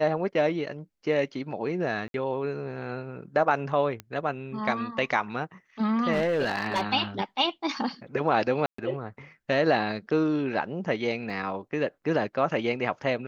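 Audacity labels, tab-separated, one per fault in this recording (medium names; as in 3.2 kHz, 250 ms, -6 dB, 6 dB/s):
2.080000	2.140000	dropout 62 ms
4.000000	4.000000	pop -21 dBFS
6.120000	6.820000	clipped -21 dBFS
8.660000	8.780000	dropout 124 ms
11.300000	11.300000	dropout 2.3 ms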